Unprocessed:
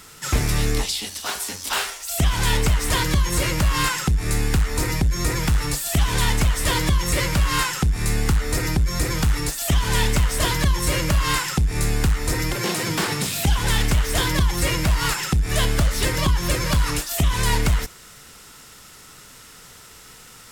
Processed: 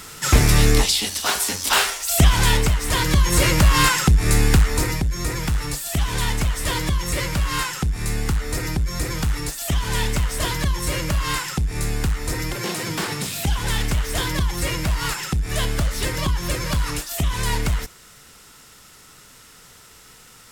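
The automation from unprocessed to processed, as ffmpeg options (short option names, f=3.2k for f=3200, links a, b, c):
-af "volume=13dB,afade=t=out:st=2.18:d=0.62:silence=0.398107,afade=t=in:st=2.8:d=0.65:silence=0.446684,afade=t=out:st=4.54:d=0.5:silence=0.421697"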